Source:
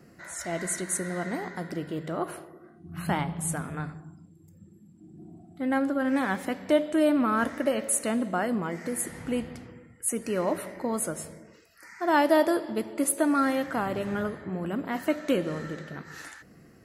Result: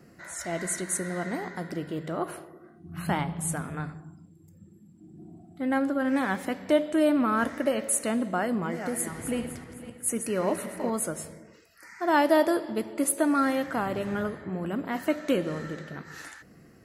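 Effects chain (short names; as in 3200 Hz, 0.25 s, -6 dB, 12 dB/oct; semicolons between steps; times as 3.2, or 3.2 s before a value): 8.37–10.9 regenerating reverse delay 0.255 s, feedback 47%, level -8.5 dB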